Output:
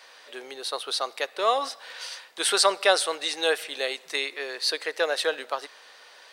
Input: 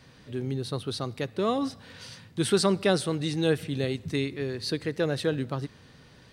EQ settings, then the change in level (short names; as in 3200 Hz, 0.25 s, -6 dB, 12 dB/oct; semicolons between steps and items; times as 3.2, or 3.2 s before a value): HPF 580 Hz 24 dB/oct; +8.0 dB